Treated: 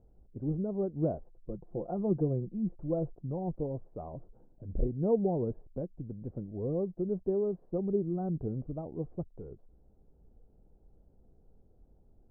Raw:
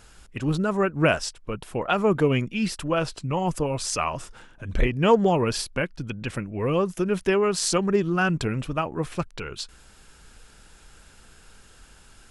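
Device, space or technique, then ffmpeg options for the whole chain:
under water: -filter_complex "[0:a]asettb=1/sr,asplit=3[a][b][c];[a]atrim=end=1.264[d];[b]atrim=start=1.26:end=3.17,asetpts=PTS-STARTPTS,afade=t=in:d=0.004:c=qsin,afade=t=out:st=1.906:d=0.004:c=qsin,aecho=1:1:5.8:0.54,atrim=end_sample=84231[e];[c]atrim=start=3.166[f];[d][e]acrossfade=d=0.004:c1=hsin:c2=qsin[g];[g][f]acrossfade=d=0.004:c1=qsin:c2=hsin,lowpass=f=550:w=0.5412,lowpass=f=550:w=1.3066,equalizer=f=750:t=o:w=0.33:g=6,volume=-8dB"

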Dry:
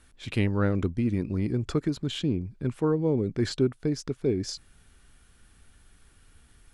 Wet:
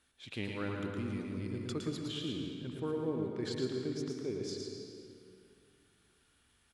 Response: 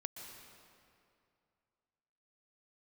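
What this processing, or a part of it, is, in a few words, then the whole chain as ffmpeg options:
PA in a hall: -filter_complex "[0:a]asettb=1/sr,asplit=3[a][b][c];[a]atrim=end=0.494[d];[b]atrim=start=0.49:end=2,asetpts=PTS-STARTPTS,afade=t=in:d=0.004:c=qsin,afade=t=out:st=1.506:d=0.004:c=qsin,highshelf=f=6.5k:g=11.5[e];[c]atrim=start=1.996[f];[d][e]acrossfade=d=0.004:c1=hsin:c2=qsin[g];[g][f]acrossfade=d=0.004:c1=qsin:c2=hsin,highpass=f=190:p=1,equalizer=f=3.5k:t=o:w=0.72:g=5,aecho=1:1:112:0.562[h];[1:a]atrim=start_sample=2205[i];[h][i]afir=irnorm=-1:irlink=0,volume=-7.5dB"

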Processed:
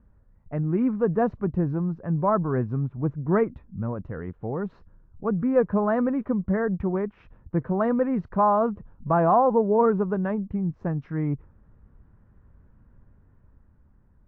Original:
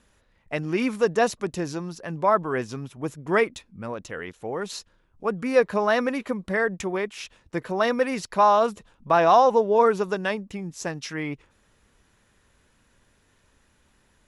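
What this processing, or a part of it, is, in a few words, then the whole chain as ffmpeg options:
action camera in a waterproof case: -af "lowpass=f=1.4k:w=0.5412,lowpass=f=1.4k:w=1.3066,bass=f=250:g=15,treble=f=4k:g=13,dynaudnorm=f=220:g=9:m=3.5dB,volume=-6dB" -ar 22050 -c:a aac -b:a 64k

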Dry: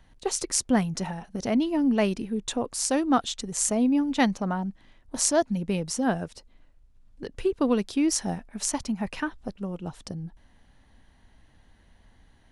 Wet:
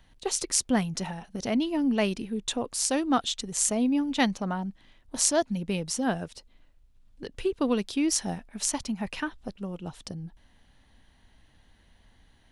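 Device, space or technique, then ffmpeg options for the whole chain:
presence and air boost: -af "equalizer=f=3.3k:t=o:w=1.2:g=5,highshelf=f=9.6k:g=5.5,volume=-2.5dB"

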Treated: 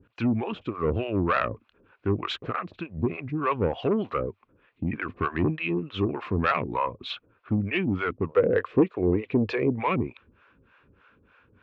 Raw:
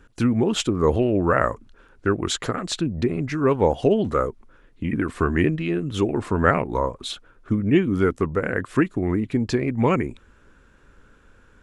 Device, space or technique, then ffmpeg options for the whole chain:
guitar amplifier with harmonic tremolo: -filter_complex "[0:a]acrossover=split=540[a][b];[a]aeval=exprs='val(0)*(1-1/2+1/2*cos(2*PI*3.3*n/s))':c=same[c];[b]aeval=exprs='val(0)*(1-1/2-1/2*cos(2*PI*3.3*n/s))':c=same[d];[c][d]amix=inputs=2:normalize=0,asoftclip=type=tanh:threshold=-17.5dB,highpass=88,equalizer=f=97:t=q:w=4:g=6,equalizer=f=1.1k:t=q:w=4:g=5,equalizer=f=2.5k:t=q:w=4:g=9,lowpass=f=3.7k:w=0.5412,lowpass=f=3.7k:w=1.3066,asettb=1/sr,asplit=3[e][f][g];[e]atrim=end=8.294[h];[f]atrim=start=8.29:end=9.79,asetpts=PTS-STARTPTS,afade=t=in:d=0.004:c=qsin,afade=t=out:st=1.496:d=0.004:c=qsin,equalizer=f=470:t=o:w=0.64:g=14[i];[g]atrim=start=9.786[j];[h][i]acrossfade=d=0.004:c1=hsin:c2=qsin[k];[k][j]acrossfade=d=0.004:c1=qsin:c2=hsin"

